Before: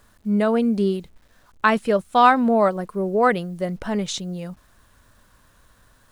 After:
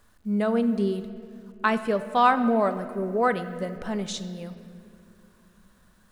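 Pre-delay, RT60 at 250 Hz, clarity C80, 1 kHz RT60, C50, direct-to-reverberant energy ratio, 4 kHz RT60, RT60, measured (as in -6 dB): 3 ms, 4.2 s, 13.0 dB, 2.1 s, 12.0 dB, 10.0 dB, 1.6 s, 2.5 s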